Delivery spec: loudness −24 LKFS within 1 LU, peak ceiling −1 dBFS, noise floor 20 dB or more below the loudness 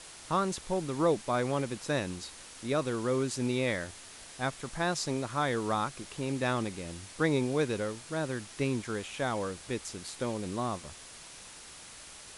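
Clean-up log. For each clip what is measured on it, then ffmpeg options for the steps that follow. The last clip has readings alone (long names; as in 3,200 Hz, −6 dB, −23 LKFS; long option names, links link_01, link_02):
background noise floor −49 dBFS; target noise floor −53 dBFS; integrated loudness −32.5 LKFS; sample peak −15.5 dBFS; target loudness −24.0 LKFS
→ -af "afftdn=noise_reduction=6:noise_floor=-49"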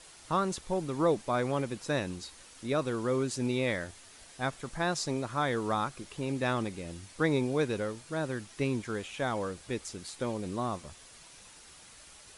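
background noise floor −54 dBFS; integrated loudness −32.5 LKFS; sample peak −15.5 dBFS; target loudness −24.0 LKFS
→ -af "volume=8.5dB"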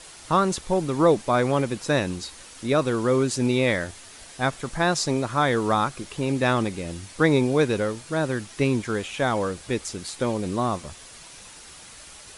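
integrated loudness −24.0 LKFS; sample peak −7.0 dBFS; background noise floor −45 dBFS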